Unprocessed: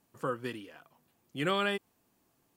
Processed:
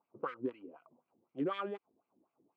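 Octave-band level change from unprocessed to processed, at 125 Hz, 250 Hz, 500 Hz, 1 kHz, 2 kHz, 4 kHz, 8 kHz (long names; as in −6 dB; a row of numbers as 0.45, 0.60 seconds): −11.0 dB, −2.5 dB, −5.0 dB, −6.0 dB, −14.5 dB, −16.0 dB, below −25 dB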